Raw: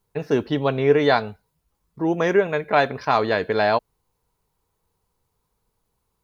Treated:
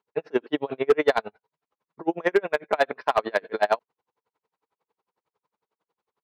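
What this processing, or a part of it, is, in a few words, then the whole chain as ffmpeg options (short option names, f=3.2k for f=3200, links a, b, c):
helicopter radio: -af "highpass=360,lowpass=2.8k,aeval=exprs='val(0)*pow(10,-36*(0.5-0.5*cos(2*PI*11*n/s))/20)':c=same,asoftclip=type=hard:threshold=-16dB,volume=5dB"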